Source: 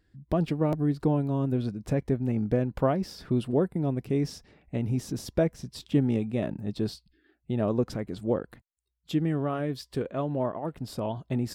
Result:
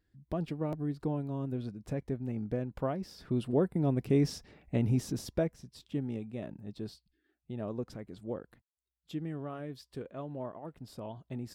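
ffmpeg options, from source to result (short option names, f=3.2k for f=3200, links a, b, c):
-af "volume=0.5dB,afade=t=in:st=3.08:d=1.04:silence=0.354813,afade=t=out:st=4.85:d=0.79:silence=0.266073"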